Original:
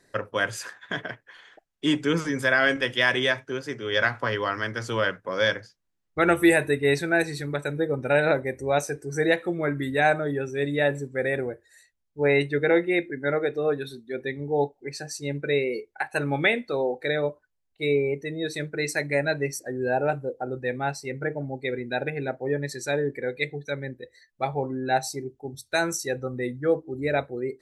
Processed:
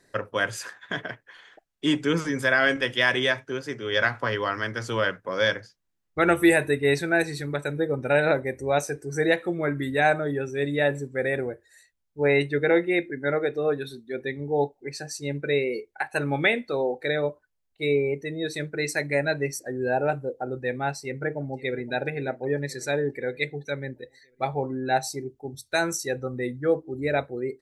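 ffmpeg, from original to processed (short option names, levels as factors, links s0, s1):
-filter_complex "[0:a]asplit=2[s0][s1];[s1]afade=t=in:st=21.01:d=0.01,afade=t=out:st=21.92:d=0.01,aecho=0:1:520|1040|1560|2080|2600:0.125893|0.0755355|0.0453213|0.0271928|0.0163157[s2];[s0][s2]amix=inputs=2:normalize=0"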